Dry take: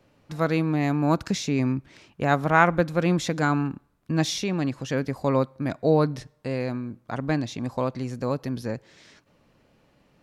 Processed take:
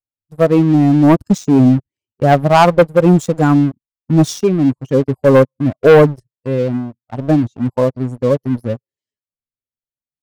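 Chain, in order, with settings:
spectral dynamics exaggerated over time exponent 2
octave-band graphic EQ 125/250/500/1,000/2,000/4,000/8,000 Hz +7/+5/+11/+7/−6/−8/+5 dB
leveller curve on the samples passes 3
level −1 dB

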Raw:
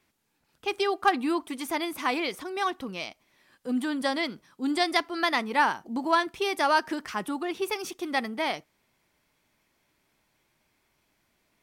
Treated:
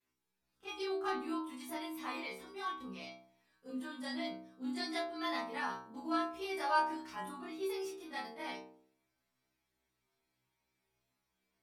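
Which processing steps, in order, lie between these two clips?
every overlapping window played backwards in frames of 62 ms
stiff-string resonator 62 Hz, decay 0.75 s, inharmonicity 0.002
level +2 dB

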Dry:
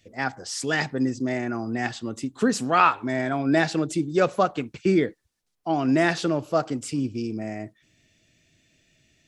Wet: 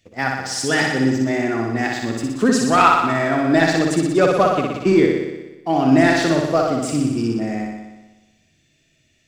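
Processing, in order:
leveller curve on the samples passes 1
flutter between parallel walls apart 10.4 metres, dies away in 1.1 s
level +1 dB

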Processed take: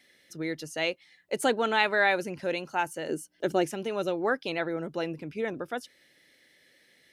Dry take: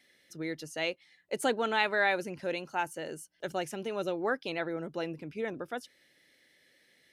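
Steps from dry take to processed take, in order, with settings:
0:03.09–0:03.71: parametric band 310 Hz +10 dB 1.3 octaves
level +3.5 dB

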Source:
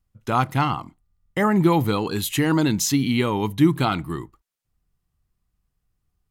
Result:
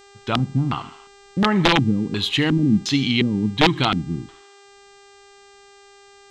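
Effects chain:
high-shelf EQ 3,700 Hz +4.5 dB
on a send: feedback echo with a high-pass in the loop 74 ms, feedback 63%, high-pass 330 Hz, level −17 dB
on the sum: wrap-around overflow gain 9 dB
auto-filter low-pass square 1.4 Hz 230–3,500 Hz
hum with harmonics 400 Hz, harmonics 21, −49 dBFS −4 dB per octave

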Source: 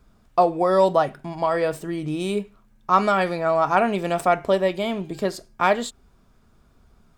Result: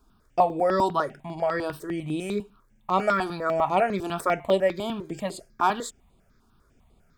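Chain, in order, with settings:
low-shelf EQ 130 Hz −5.5 dB
step-sequenced phaser 10 Hz 540–5,600 Hz

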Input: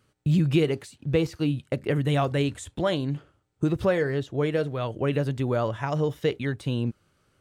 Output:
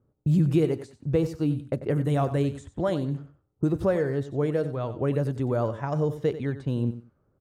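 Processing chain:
parametric band 2,900 Hz −11.5 dB 1.7 octaves
low-pass that shuts in the quiet parts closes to 760 Hz, open at −23 dBFS
on a send: repeating echo 93 ms, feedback 21%, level −13 dB

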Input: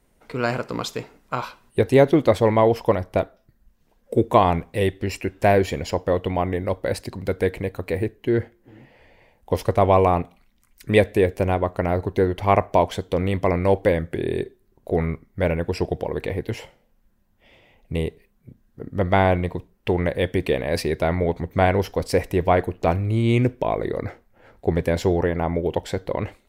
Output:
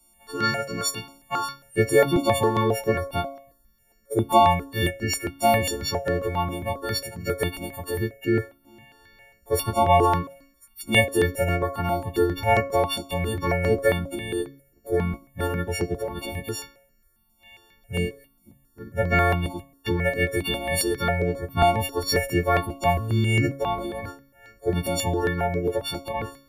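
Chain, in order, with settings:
every partial snapped to a pitch grid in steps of 4 semitones
hum removal 138 Hz, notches 34
step-sequenced phaser 7.4 Hz 460–3,400 Hz

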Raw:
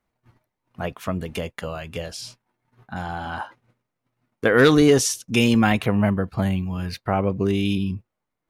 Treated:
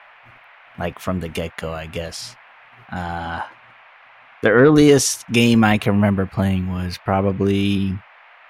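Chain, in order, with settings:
noise in a band 620–2,500 Hz −51 dBFS
0:03.18–0:04.76: treble cut that deepens with the level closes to 1,200 Hz, closed at −10.5 dBFS
level +3.5 dB

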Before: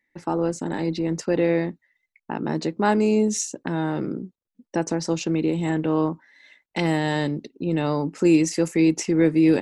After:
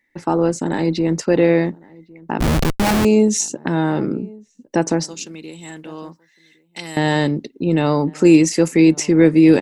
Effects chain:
0:05.05–0:06.97: first-order pre-emphasis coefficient 0.9
slap from a distant wall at 190 metres, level −24 dB
0:02.40–0:03.05: comparator with hysteresis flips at −25.5 dBFS
level +6.5 dB

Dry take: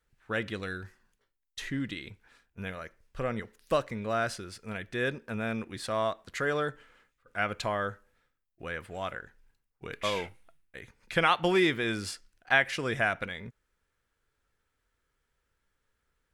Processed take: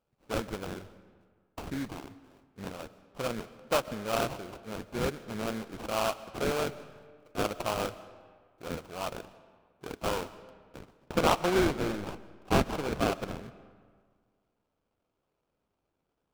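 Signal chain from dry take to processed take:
high-pass filter 200 Hz 6 dB per octave
sample-rate reduction 1,900 Hz, jitter 20%
high-shelf EQ 7,000 Hz −3.5 dB, from 0:10.79 −8.5 dB
comb and all-pass reverb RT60 1.8 s, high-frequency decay 0.65×, pre-delay 90 ms, DRR 16.5 dB

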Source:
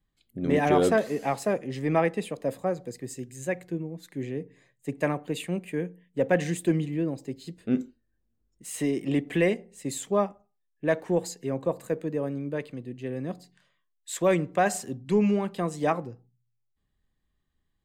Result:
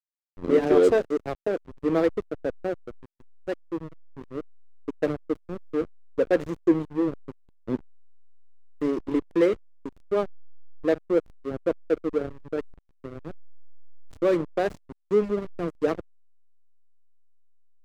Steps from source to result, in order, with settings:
loudspeaker in its box 280–7,900 Hz, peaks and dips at 320 Hz +8 dB, 460 Hz +8 dB, 810 Hz −9 dB, 2,700 Hz −9 dB
slack as between gear wheels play −21.5 dBFS

